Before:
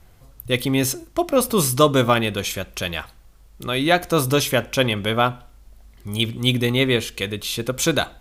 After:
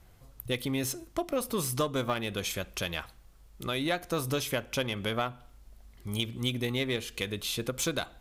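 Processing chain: Chebyshev shaper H 6 -29 dB, 7 -32 dB, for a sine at -1 dBFS; compression 3:1, threshold -25 dBFS, peak gain reduction 12 dB; trim -4 dB

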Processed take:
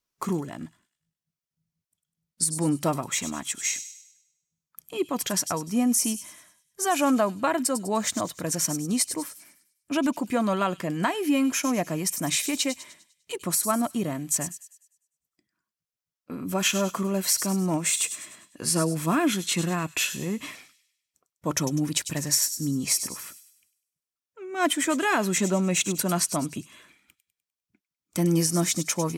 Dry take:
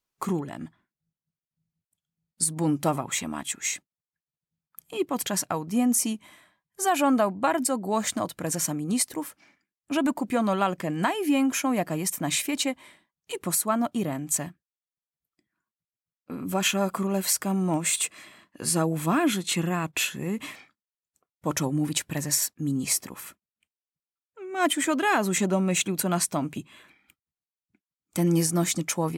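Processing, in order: peaking EQ 5.6 kHz +5 dB 0.33 oct; band-stop 800 Hz, Q 12; on a send: feedback echo behind a high-pass 100 ms, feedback 44%, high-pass 4.2 kHz, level -8 dB

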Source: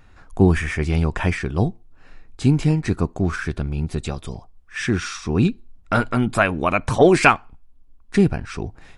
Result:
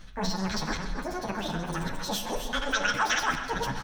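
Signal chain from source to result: chunks repeated in reverse 490 ms, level -8 dB; bass shelf 110 Hz +4.5 dB; reverse; compression 5:1, threshold -29 dBFS, peak gain reduction 19 dB; reverse; fifteen-band graphic EQ 160 Hz -9 dB, 630 Hz +10 dB, 2.5 kHz +4 dB, 6.3 kHz -6 dB; tape echo 304 ms, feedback 84%, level -12 dB, low-pass 3.1 kHz; on a send at -8 dB: reverberation RT60 2.2 s, pre-delay 5 ms; on the sum: speed mistake 33 rpm record played at 78 rpm; endless flanger 9.4 ms +1.2 Hz; trim +3 dB

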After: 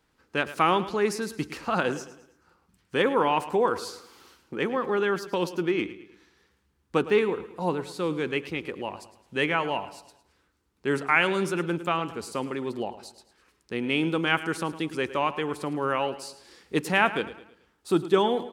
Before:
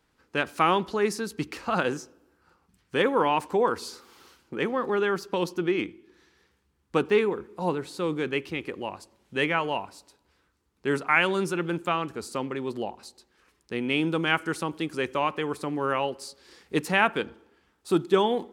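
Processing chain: feedback delay 108 ms, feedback 42%, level -15 dB

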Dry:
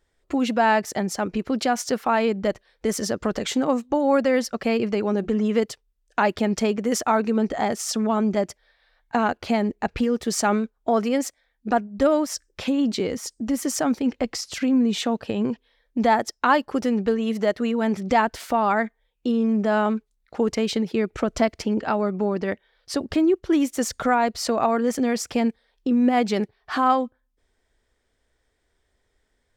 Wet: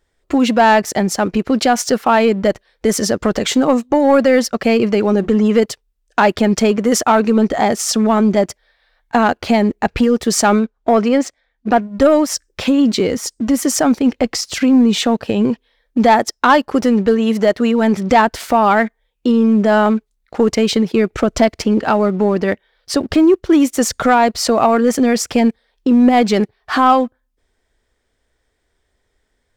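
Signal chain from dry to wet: 10.59–11.81 s: distance through air 85 m; waveshaping leveller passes 1; trim +5.5 dB

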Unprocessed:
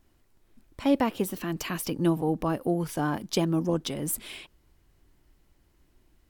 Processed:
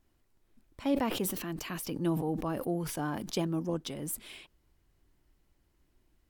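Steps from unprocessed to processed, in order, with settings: 0.81–3.47 s: decay stretcher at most 52 dB/s; trim -6.5 dB

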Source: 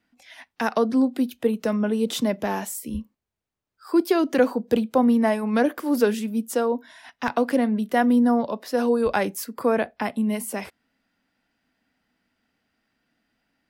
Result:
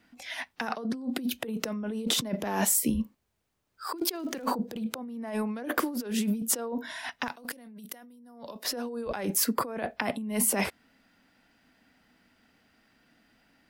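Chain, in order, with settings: compressor with a negative ratio -32 dBFS, ratio -1; 3.97–4.44 s: crackle 170 per s -> 390 per s -45 dBFS; 7.28–8.65 s: pre-emphasis filter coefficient 0.8

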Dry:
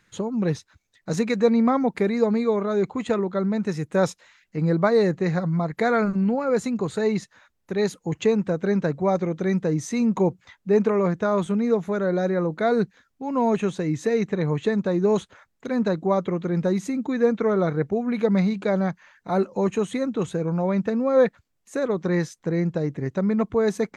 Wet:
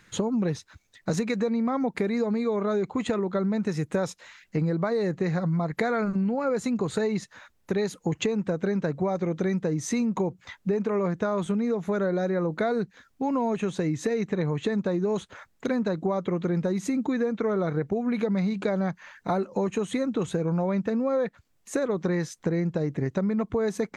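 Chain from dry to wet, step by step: in parallel at +0.5 dB: peak limiter -15.5 dBFS, peak gain reduction 8 dB; on the sum: compression 10:1, threshold -23 dBFS, peak gain reduction 14 dB

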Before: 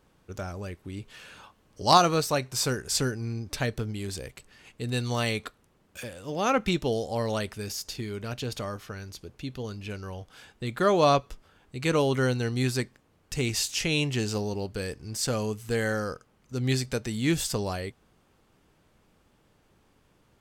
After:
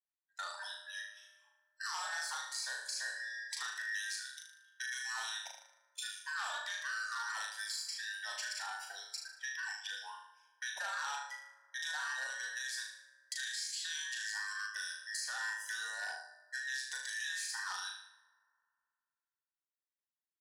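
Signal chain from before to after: every band turned upside down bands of 2 kHz; spectral noise reduction 24 dB; gate -46 dBFS, range -21 dB; high-order bell 5.9 kHz +12.5 dB; peak limiter -14.5 dBFS, peak gain reduction 17 dB; compression 12:1, threshold -33 dBFS, peak gain reduction 13.5 dB; ladder high-pass 770 Hz, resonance 50%; flutter echo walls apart 6.5 m, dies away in 0.61 s; on a send at -15 dB: reverberation RT60 2.2 s, pre-delay 3 ms; on the sum: transformer saturation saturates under 4 kHz; trim +3 dB

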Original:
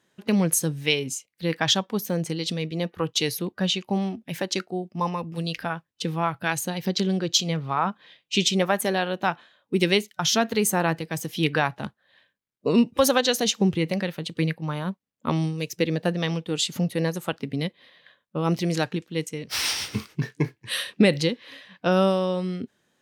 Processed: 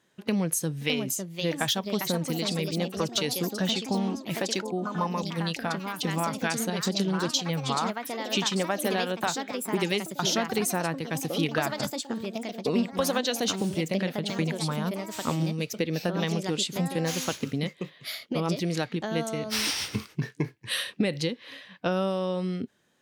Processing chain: compression 3:1, threshold -25 dBFS, peak gain reduction 9.5 dB; ever faster or slower copies 656 ms, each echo +3 st, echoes 3, each echo -6 dB

